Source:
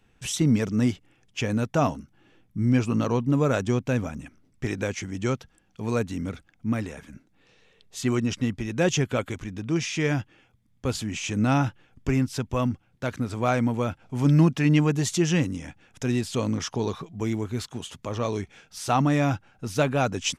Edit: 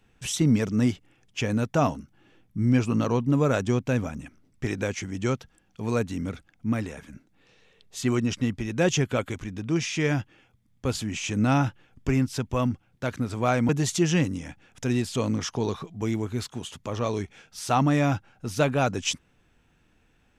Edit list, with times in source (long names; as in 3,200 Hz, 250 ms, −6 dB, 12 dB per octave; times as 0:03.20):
0:13.69–0:14.88: remove